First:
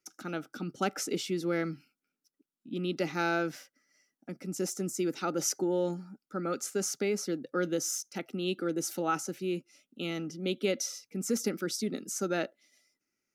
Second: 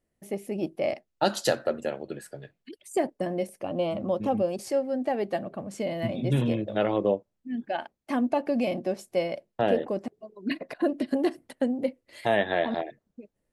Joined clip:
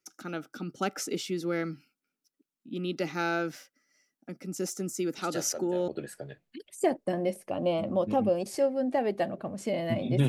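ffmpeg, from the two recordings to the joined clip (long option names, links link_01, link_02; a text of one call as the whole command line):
ffmpeg -i cue0.wav -i cue1.wav -filter_complex "[1:a]asplit=2[link_01][link_02];[0:a]apad=whole_dur=10.28,atrim=end=10.28,atrim=end=5.882[link_03];[link_02]atrim=start=2.008:end=6.41[link_04];[link_01]atrim=start=1.31:end=2.01,asetpts=PTS-STARTPTS,volume=-12dB,afade=type=in:duration=0.004:curve=hsin,afade=type=out:start_time=0.696:duration=0.004:curve=hsin,adelay=5180[link_05];[link_03][link_04]acrossfade=duration=0.004:curve1=hsin:curve2=hsin[link_06];[link_06][link_05]amix=inputs=2:normalize=0" out.wav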